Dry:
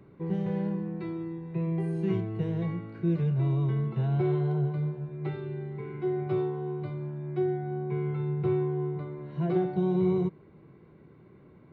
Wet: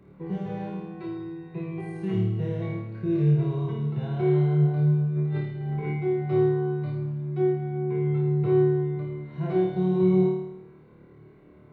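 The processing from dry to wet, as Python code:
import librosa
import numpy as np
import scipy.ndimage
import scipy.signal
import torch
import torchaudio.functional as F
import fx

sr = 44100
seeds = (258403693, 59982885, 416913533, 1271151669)

y = fx.over_compress(x, sr, threshold_db=-38.0, ratio=-0.5, at=(5.15, 5.91), fade=0.02)
y = fx.room_flutter(y, sr, wall_m=4.6, rt60_s=0.82)
y = y * 10.0 ** (-1.5 / 20.0)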